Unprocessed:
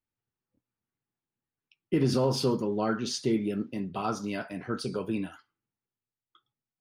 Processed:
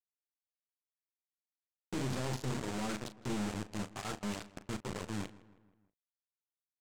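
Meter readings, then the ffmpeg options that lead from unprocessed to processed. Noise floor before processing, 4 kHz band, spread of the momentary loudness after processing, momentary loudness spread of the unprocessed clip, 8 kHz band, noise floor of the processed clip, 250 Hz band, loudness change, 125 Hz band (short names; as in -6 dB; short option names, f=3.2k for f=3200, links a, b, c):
under -85 dBFS, -8.0 dB, 6 LU, 9 LU, -4.5 dB, under -85 dBFS, -9.5 dB, -9.5 dB, -7.0 dB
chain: -filter_complex "[0:a]bass=f=250:g=10,treble=f=4k:g=-10,bandreject=f=60:t=h:w=6,bandreject=f=120:t=h:w=6,bandreject=f=180:t=h:w=6,bandreject=f=240:t=h:w=6,bandreject=f=300:t=h:w=6,bandreject=f=360:t=h:w=6,bandreject=f=420:t=h:w=6,bandreject=f=480:t=h:w=6,flanger=delay=4.9:depth=6.6:regen=39:speed=0.7:shape=triangular,aresample=16000,acrusher=bits=4:mix=0:aa=0.000001,aresample=44100,aeval=exprs='(tanh(39.8*val(0)+0.35)-tanh(0.35))/39.8':c=same,asplit=2[a][b];[b]adelay=38,volume=-12.5dB[c];[a][c]amix=inputs=2:normalize=0,asplit=2[d][e];[e]adelay=160,lowpass=f=2.8k:p=1,volume=-18.5dB,asplit=2[f][g];[g]adelay=160,lowpass=f=2.8k:p=1,volume=0.52,asplit=2[h][i];[i]adelay=160,lowpass=f=2.8k:p=1,volume=0.52,asplit=2[j][k];[k]adelay=160,lowpass=f=2.8k:p=1,volume=0.52[l];[f][h][j][l]amix=inputs=4:normalize=0[m];[d][m]amix=inputs=2:normalize=0,volume=-1.5dB"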